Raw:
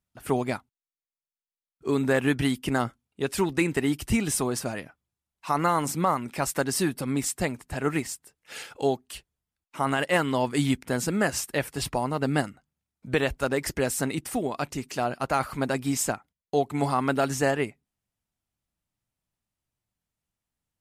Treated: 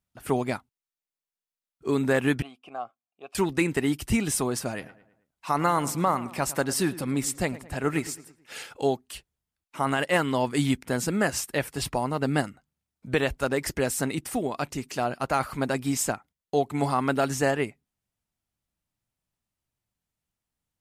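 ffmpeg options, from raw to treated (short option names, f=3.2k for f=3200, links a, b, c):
-filter_complex "[0:a]asettb=1/sr,asplit=3[a][b][c];[a]atrim=end=2.424[d];[b]atrim=start=2.42:end=3.35,asetpts=PTS-STARTPTS,afade=t=in:d=0.004:c=qsin,afade=t=out:st=0.926:d=0.004:c=qsin,asplit=3[e][f][g];[e]bandpass=f=730:t=q:w=8,volume=0dB[h];[f]bandpass=f=1.09k:t=q:w=8,volume=-6dB[i];[g]bandpass=f=2.44k:t=q:w=8,volume=-9dB[j];[h][i][j]amix=inputs=3:normalize=0[k];[c]atrim=start=3.346[l];[d][k]acrossfade=d=0.004:c1=hsin:c2=qsin[m];[m][l]acrossfade=d=0.004:c1=qsin:c2=hsin,asettb=1/sr,asplit=3[n][o][p];[n]atrim=end=4.694[q];[o]atrim=start=4.69:end=8.6,asetpts=PTS-STARTPTS,afade=t=in:d=0.004:c=qsin,afade=t=out:st=3.906:d=0.004:c=qsin,asplit=2[r][s];[s]adelay=109,lowpass=f=3k:p=1,volume=-16.5dB,asplit=2[t][u];[u]adelay=109,lowpass=f=3k:p=1,volume=0.47,asplit=2[v][w];[w]adelay=109,lowpass=f=3k:p=1,volume=0.47,asplit=2[x][y];[y]adelay=109,lowpass=f=3k:p=1,volume=0.47[z];[r][t][v][x][z]amix=inputs=5:normalize=0,atrim=end_sample=172431[aa];[p]atrim=start=8.596[ab];[q][aa]acrossfade=d=0.004:c1=hsin:c2=qsin[ac];[ac][ab]acrossfade=d=0.004:c1=qsin:c2=hsin"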